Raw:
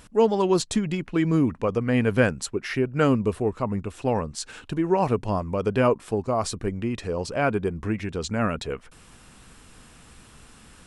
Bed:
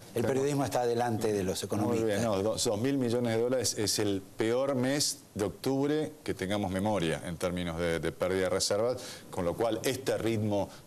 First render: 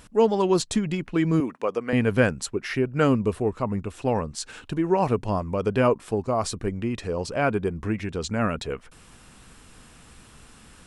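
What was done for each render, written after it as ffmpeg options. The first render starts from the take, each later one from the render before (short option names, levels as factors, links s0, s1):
-filter_complex "[0:a]asettb=1/sr,asplit=3[s0][s1][s2];[s0]atrim=end=1.404[s3];[s1]atrim=start=1.4:end=1.93,asetpts=PTS-STARTPTS,afade=t=in:d=0.004:c=qsin,afade=t=out:st=0.526:d=0.004:c=qsin,highpass=350[s4];[s2]atrim=start=1.926[s5];[s3][s4]acrossfade=d=0.004:c1=hsin:c2=qsin[s6];[s6][s5]acrossfade=d=0.004:c1=qsin:c2=hsin"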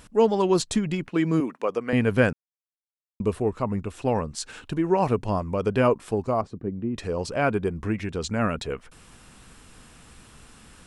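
-filter_complex "[0:a]asettb=1/sr,asplit=3[s0][s1][s2];[s0]atrim=end=1.084[s3];[s1]atrim=start=1.08:end=1.7,asetpts=PTS-STARTPTS,afade=t=in:d=0.004:c=qsin,afade=t=out:st=0.616:d=0.004:c=qsin,highpass=150[s4];[s2]atrim=start=1.696[s5];[s3][s4]acrossfade=d=0.004:c1=hsin:c2=qsin[s6];[s6][s5]acrossfade=d=0.004:c1=qsin:c2=hsin,asettb=1/sr,asplit=3[s7][s8][s9];[s7]atrim=end=6.414[s10];[s8]atrim=start=6.41:end=6.96,asetpts=PTS-STARTPTS,afade=t=in:d=0.004:c=qsin,afade=t=out:st=0.546:d=0.004:c=qsin,bandpass=f=220:t=q:w=0.79[s11];[s9]atrim=start=6.956[s12];[s10][s11]acrossfade=d=0.004:c1=hsin:c2=qsin[s13];[s13][s12]acrossfade=d=0.004:c1=qsin:c2=hsin,asplit=3[s14][s15][s16];[s14]atrim=end=2.33,asetpts=PTS-STARTPTS,afade=t=out:st=2.326:d=0.004:c=hsin[s17];[s15]atrim=start=2.33:end=3.2,asetpts=PTS-STARTPTS,volume=0[s18];[s16]atrim=start=3.2,asetpts=PTS-STARTPTS,afade=t=in:d=0.004:c=hsin[s19];[s17][s18][s19]concat=n=3:v=0:a=1"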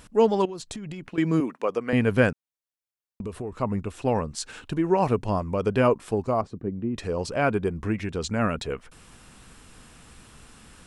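-filter_complex "[0:a]asettb=1/sr,asplit=3[s0][s1][s2];[s0]atrim=end=0.454[s3];[s1]atrim=start=0.45:end=1.18,asetpts=PTS-STARTPTS,afade=t=in:d=0.004:c=qsin,afade=t=out:st=0.726:d=0.004:c=qsin,acompressor=threshold=0.0251:ratio=16:attack=3.2:release=140:knee=1:detection=peak[s4];[s2]atrim=start=1.176[s5];[s3][s4]acrossfade=d=0.004:c1=hsin:c2=qsin[s6];[s6][s5]acrossfade=d=0.004:c1=qsin:c2=hsin,asettb=1/sr,asplit=3[s7][s8][s9];[s7]atrim=end=2.304[s10];[s8]atrim=start=2.3:end=3.52,asetpts=PTS-STARTPTS,afade=t=in:d=0.004:c=qsin,afade=t=out:st=1.216:d=0.004:c=qsin,acompressor=threshold=0.0355:ratio=6:attack=3.2:release=140:knee=1:detection=peak[s11];[s9]atrim=start=3.516[s12];[s10][s11]acrossfade=d=0.004:c1=hsin:c2=qsin[s13];[s13][s12]acrossfade=d=0.004:c1=qsin:c2=hsin"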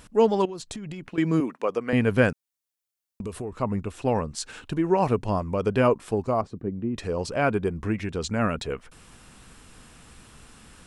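-filter_complex "[0:a]asettb=1/sr,asplit=3[s0][s1][s2];[s0]atrim=end=2.294[s3];[s1]atrim=start=2.29:end=3.45,asetpts=PTS-STARTPTS,afade=t=in:d=0.004:c=qsin,afade=t=out:st=1.156:d=0.004:c=qsin,highshelf=f=3800:g=7.5[s4];[s2]atrim=start=3.446[s5];[s3][s4]acrossfade=d=0.004:c1=hsin:c2=qsin[s6];[s6][s5]acrossfade=d=0.004:c1=qsin:c2=hsin"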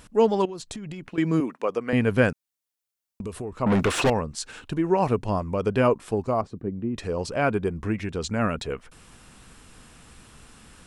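-filter_complex "[0:a]asettb=1/sr,asplit=3[s0][s1][s2];[s0]atrim=end=3.664[s3];[s1]atrim=start=3.66:end=4.1,asetpts=PTS-STARTPTS,afade=t=in:d=0.004:c=qsin,afade=t=out:st=0.436:d=0.004:c=qsin,asplit=2[s4][s5];[s5]highpass=f=720:p=1,volume=44.7,asoftclip=type=tanh:threshold=0.237[s6];[s4][s6]amix=inputs=2:normalize=0,lowpass=f=3600:p=1,volume=0.501[s7];[s2]atrim=start=4.096[s8];[s3][s7]acrossfade=d=0.004:c1=hsin:c2=qsin[s9];[s9][s8]acrossfade=d=0.004:c1=qsin:c2=hsin"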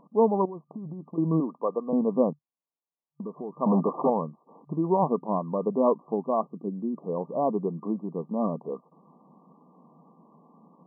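-af "afftfilt=real='re*between(b*sr/4096,140,1200)':imag='im*between(b*sr/4096,140,1200)':win_size=4096:overlap=0.75,equalizer=f=380:w=1.5:g=-3"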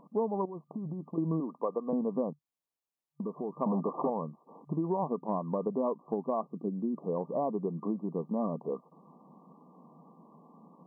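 -af "acompressor=threshold=0.0398:ratio=5"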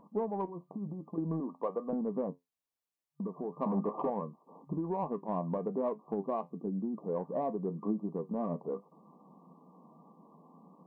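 -filter_complex "[0:a]asplit=2[s0][s1];[s1]asoftclip=type=tanh:threshold=0.0422,volume=0.355[s2];[s0][s2]amix=inputs=2:normalize=0,flanger=delay=9.3:depth=2.3:regen=64:speed=1:shape=sinusoidal"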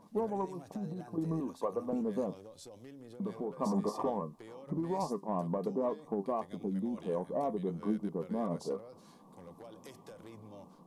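-filter_complex "[1:a]volume=0.0794[s0];[0:a][s0]amix=inputs=2:normalize=0"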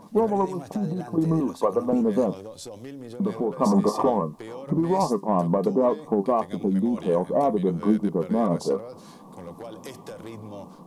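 -af "volume=3.98"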